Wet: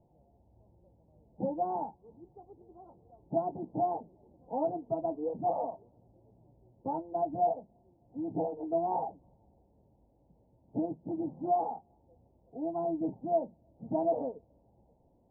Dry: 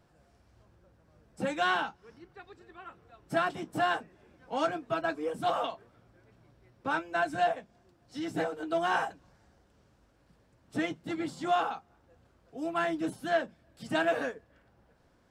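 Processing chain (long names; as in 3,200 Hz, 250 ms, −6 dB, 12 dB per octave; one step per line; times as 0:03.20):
Chebyshev low-pass filter 910 Hz, order 6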